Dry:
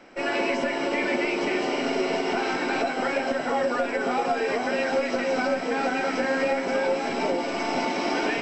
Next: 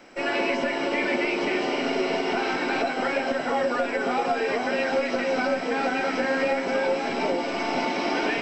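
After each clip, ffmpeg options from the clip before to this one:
-filter_complex "[0:a]acrossover=split=5000[a][b];[b]acompressor=threshold=-60dB:ratio=4:attack=1:release=60[c];[a][c]amix=inputs=2:normalize=0,highshelf=f=4.9k:g=8"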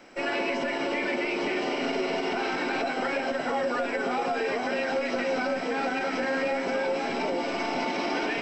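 -af "alimiter=limit=-18dB:level=0:latency=1:release=32,volume=-1.5dB"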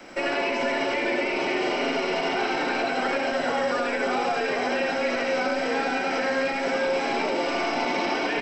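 -filter_complex "[0:a]acrossover=split=150|340|1000|2800[a][b][c][d][e];[a]acompressor=threshold=-54dB:ratio=4[f];[b]acompressor=threshold=-47dB:ratio=4[g];[c]acompressor=threshold=-35dB:ratio=4[h];[d]acompressor=threshold=-39dB:ratio=4[i];[e]acompressor=threshold=-45dB:ratio=4[j];[f][g][h][i][j]amix=inputs=5:normalize=0,aecho=1:1:84:0.668,volume=6.5dB"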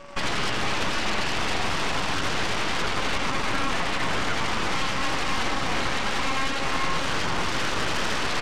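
-af "aeval=exprs='val(0)+0.0158*sin(2*PI*570*n/s)':c=same,aeval=exprs='0.237*(cos(1*acos(clip(val(0)/0.237,-1,1)))-cos(1*PI/2))+0.106*(cos(3*acos(clip(val(0)/0.237,-1,1)))-cos(3*PI/2))+0.0531*(cos(4*acos(clip(val(0)/0.237,-1,1)))-cos(4*PI/2))+0.0335*(cos(8*acos(clip(val(0)/0.237,-1,1)))-cos(8*PI/2))':c=same"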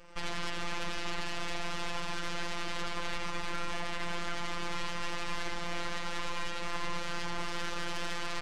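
-af "afftfilt=real='hypot(re,im)*cos(PI*b)':imag='0':win_size=1024:overlap=0.75,volume=-7.5dB"

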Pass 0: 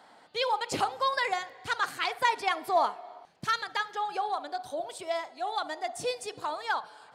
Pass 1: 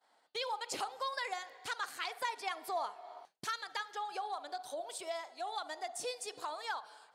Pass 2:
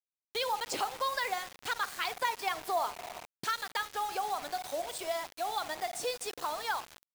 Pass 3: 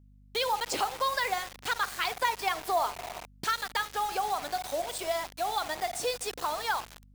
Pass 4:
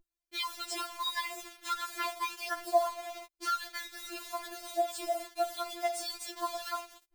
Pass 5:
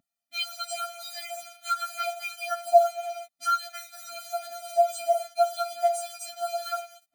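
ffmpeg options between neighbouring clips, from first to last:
-af "agate=range=-33dB:threshold=-45dB:ratio=3:detection=peak,bass=f=250:g=-14,treble=f=4k:g=5,acompressor=threshold=-45dB:ratio=2,volume=1dB"
-af "highshelf=f=7.4k:g=-6.5,acrusher=bits=7:mix=0:aa=0.000001,volume=5.5dB"
-af "aeval=exprs='val(0)+0.00112*(sin(2*PI*50*n/s)+sin(2*PI*2*50*n/s)/2+sin(2*PI*3*50*n/s)/3+sin(2*PI*4*50*n/s)/4+sin(2*PI*5*50*n/s)/5)':c=same,volume=3.5dB"
-af "afftfilt=real='re*4*eq(mod(b,16),0)':imag='im*4*eq(mod(b,16),0)':win_size=2048:overlap=0.75,volume=-1.5dB"
-af "highpass=250,lowshelf=f=440:g=9.5,afftfilt=real='re*eq(mod(floor(b*sr/1024/290),2),0)':imag='im*eq(mod(floor(b*sr/1024/290),2),0)':win_size=1024:overlap=0.75,volume=6.5dB"

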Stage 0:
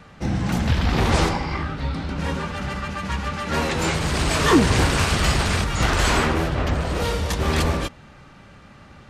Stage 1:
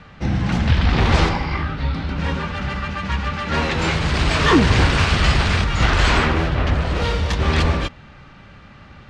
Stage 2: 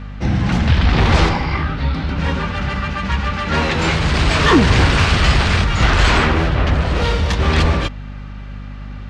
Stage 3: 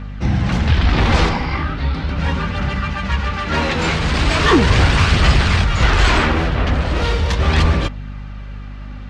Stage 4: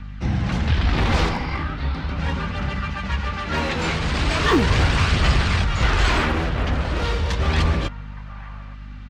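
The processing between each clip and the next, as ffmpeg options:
-af "lowpass=4.1k,equalizer=f=450:w=0.36:g=-5,volume=5.5dB"
-filter_complex "[0:a]asplit=2[a][b];[b]asoftclip=type=tanh:threshold=-13dB,volume=-6dB[c];[a][c]amix=inputs=2:normalize=0,aeval=exprs='val(0)+0.0355*(sin(2*PI*50*n/s)+sin(2*PI*2*50*n/s)/2+sin(2*PI*3*50*n/s)/3+sin(2*PI*4*50*n/s)/4+sin(2*PI*5*50*n/s)/5)':c=same"
-af "aphaser=in_gain=1:out_gain=1:delay=4.5:decay=0.24:speed=0.38:type=triangular,volume=-1dB"
-filter_complex "[0:a]acrossover=split=330|710|1800[a][b][c][d];[b]acrusher=bits=5:mix=0:aa=0.5[e];[c]aecho=1:1:866:0.266[f];[a][e][f][d]amix=inputs=4:normalize=0,volume=-5dB"

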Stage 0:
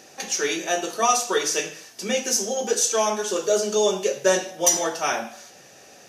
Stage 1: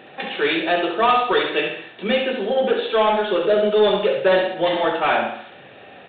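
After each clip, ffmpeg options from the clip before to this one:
-af "aresample=8000,asoftclip=type=tanh:threshold=-17dB,aresample=44100,aecho=1:1:68|136|204|272|340:0.501|0.2|0.0802|0.0321|0.0128,volume=6.5dB"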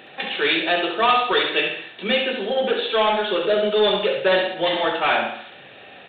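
-af "highshelf=f=2.2k:g=10,volume=-3dB"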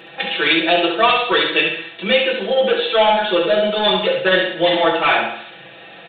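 -af "aecho=1:1:6:0.95,volume=1.5dB"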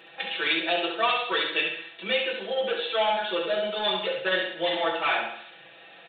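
-af "lowshelf=f=320:g=-9,volume=-9dB"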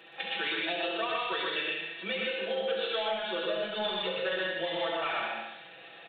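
-filter_complex "[0:a]acrossover=split=150[a][b];[b]acompressor=threshold=-28dB:ratio=6[c];[a][c]amix=inputs=2:normalize=0,asplit=2[d][e];[e]aecho=0:1:122.4|154.5:0.794|0.501[f];[d][f]amix=inputs=2:normalize=0,volume=-3dB"

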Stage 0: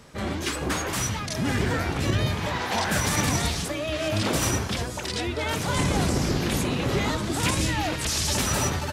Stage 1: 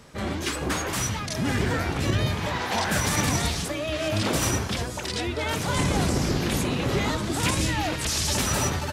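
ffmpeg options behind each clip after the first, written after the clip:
-af anull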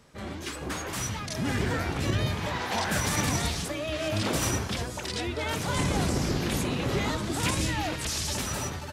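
-af "dynaudnorm=f=280:g=7:m=5dB,volume=-8dB"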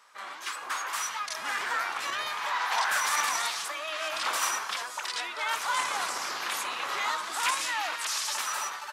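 -af "highpass=f=1.1k:t=q:w=2.3"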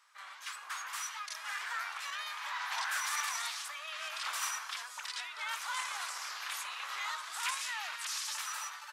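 -af "highpass=1.1k,volume=-6.5dB"

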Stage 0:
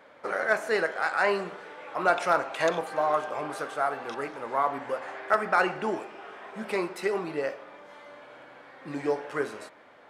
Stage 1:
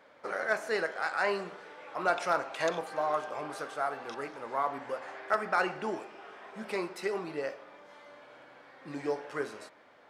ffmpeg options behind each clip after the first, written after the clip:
-af "equalizer=f=5.2k:t=o:w=0.8:g=4,volume=-5dB"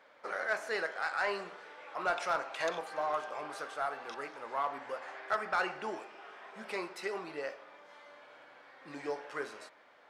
-filter_complex "[0:a]asplit=2[a][b];[b]highpass=f=720:p=1,volume=9dB,asoftclip=type=tanh:threshold=-15.5dB[c];[a][c]amix=inputs=2:normalize=0,lowpass=f=7.5k:p=1,volume=-6dB,volume=-5.5dB"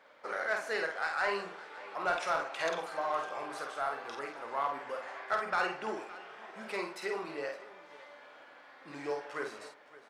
-af "aecho=1:1:50|564:0.596|0.126"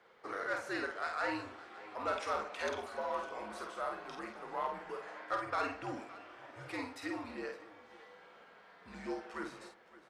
-af "afreqshift=-86,volume=-4dB"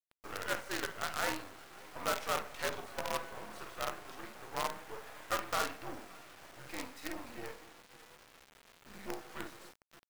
-af "acrusher=bits=6:dc=4:mix=0:aa=0.000001,volume=1dB"

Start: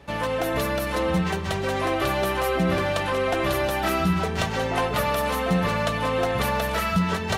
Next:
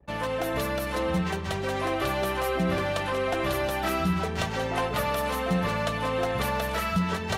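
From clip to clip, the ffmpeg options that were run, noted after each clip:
-af "anlmdn=0.0631,volume=-3.5dB"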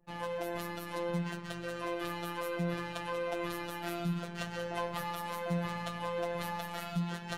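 -af "afftfilt=real='hypot(re,im)*cos(PI*b)':imag='0':win_size=1024:overlap=0.75,volume=-6.5dB"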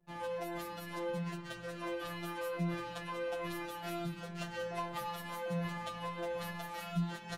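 -filter_complex "[0:a]asplit=2[a][b];[b]adelay=8.2,afreqshift=-2.3[c];[a][c]amix=inputs=2:normalize=1"

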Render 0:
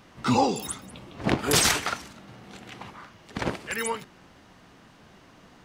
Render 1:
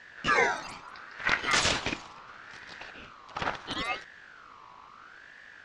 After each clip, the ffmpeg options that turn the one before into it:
-af "aeval=exprs='val(0)+0.00398*(sin(2*PI*50*n/s)+sin(2*PI*2*50*n/s)/2+sin(2*PI*3*50*n/s)/3+sin(2*PI*4*50*n/s)/4+sin(2*PI*5*50*n/s)/5)':c=same,lowpass=f=5.4k:w=0.5412,lowpass=f=5.4k:w=1.3066,aeval=exprs='val(0)*sin(2*PI*1400*n/s+1400*0.25/0.74*sin(2*PI*0.74*n/s))':c=same"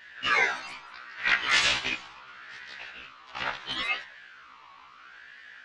-af "equalizer=f=2.7k:w=0.59:g=12.5,flanger=delay=7.8:depth=6.7:regen=90:speed=1.6:shape=sinusoidal,afftfilt=real='re*1.73*eq(mod(b,3),0)':imag='im*1.73*eq(mod(b,3),0)':win_size=2048:overlap=0.75"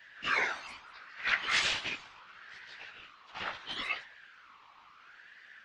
-af "afftfilt=real='hypot(re,im)*cos(2*PI*random(0))':imag='hypot(re,im)*sin(2*PI*random(1))':win_size=512:overlap=0.75"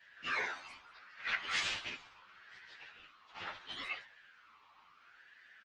-filter_complex "[0:a]asplit=2[a][b];[b]adelay=9.8,afreqshift=0.64[c];[a][c]amix=inputs=2:normalize=1,volume=-3dB"

